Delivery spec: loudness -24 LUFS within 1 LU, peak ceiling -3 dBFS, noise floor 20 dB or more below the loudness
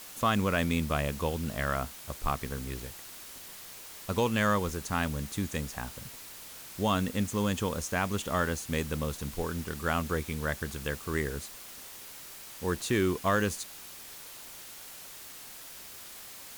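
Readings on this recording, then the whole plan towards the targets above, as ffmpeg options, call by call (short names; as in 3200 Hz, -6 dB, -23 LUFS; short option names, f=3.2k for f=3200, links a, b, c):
noise floor -47 dBFS; noise floor target -52 dBFS; loudness -31.5 LUFS; peak -15.5 dBFS; loudness target -24.0 LUFS
-> -af "afftdn=nr=6:nf=-47"
-af "volume=7.5dB"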